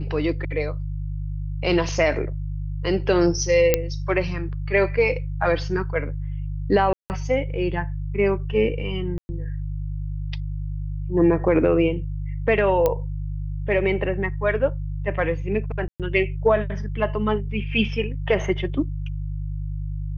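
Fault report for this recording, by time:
mains hum 50 Hz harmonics 3 −28 dBFS
0:03.74: click −3 dBFS
0:06.93–0:07.10: drop-out 169 ms
0:09.18–0:09.29: drop-out 110 ms
0:12.86: click −8 dBFS
0:15.88–0:16.00: drop-out 117 ms

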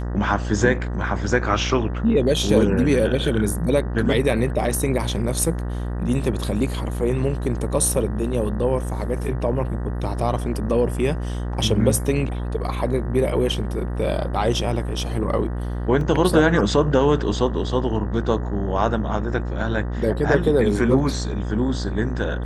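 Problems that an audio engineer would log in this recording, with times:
mains buzz 60 Hz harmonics 32 −26 dBFS
0:16.01: drop-out 2.1 ms

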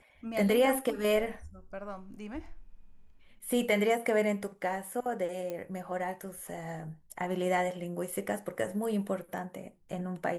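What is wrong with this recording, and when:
0:05.50: click −24 dBFS

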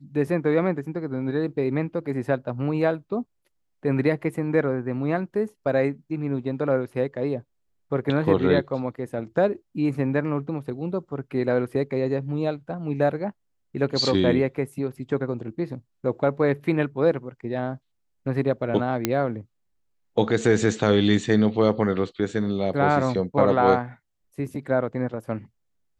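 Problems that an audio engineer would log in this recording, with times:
0:19.05: click −6 dBFS

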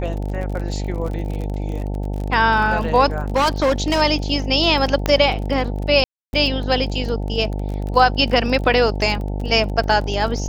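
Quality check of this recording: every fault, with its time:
mains buzz 50 Hz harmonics 18 −24 dBFS
surface crackle 33 per second −27 dBFS
0:03.36–0:04.02: clipping −13 dBFS
0:05.06: click −5 dBFS
0:06.04–0:06.33: drop-out 291 ms

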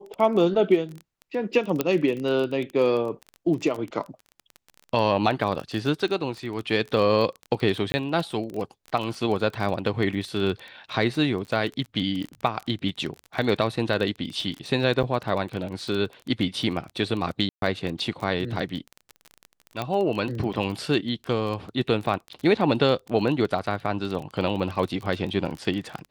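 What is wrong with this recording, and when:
surface crackle 22 per second −29 dBFS
0:01.81: click −8 dBFS
0:07.92–0:07.94: drop-out 20 ms
0:15.03–0:15.04: drop-out 7.1 ms
0:17.49–0:17.62: drop-out 132 ms
0:19.82: click −15 dBFS

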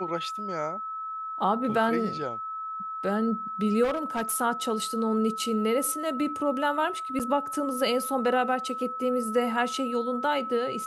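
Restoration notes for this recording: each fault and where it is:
whistle 1,300 Hz −32 dBFS
0:03.83–0:04.34: clipping −23.5 dBFS
0:07.19–0:07.20: drop-out 7.2 ms

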